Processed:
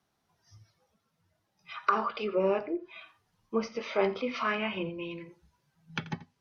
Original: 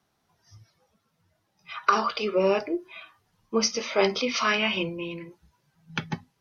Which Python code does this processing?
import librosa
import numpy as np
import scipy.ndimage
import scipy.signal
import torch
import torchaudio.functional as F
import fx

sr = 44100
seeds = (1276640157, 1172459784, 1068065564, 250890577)

y = x + 10.0 ** (-17.5 / 20.0) * np.pad(x, (int(85 * sr / 1000.0), 0))[:len(x)]
y = fx.env_lowpass_down(y, sr, base_hz=2000.0, full_db=-23.0)
y = F.gain(torch.from_numpy(y), -4.5).numpy()